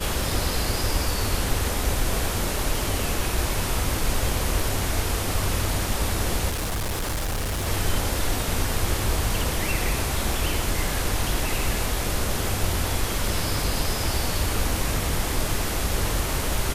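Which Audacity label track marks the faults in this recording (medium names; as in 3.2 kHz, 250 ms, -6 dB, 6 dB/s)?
6.490000	7.680000	clipped -23.5 dBFS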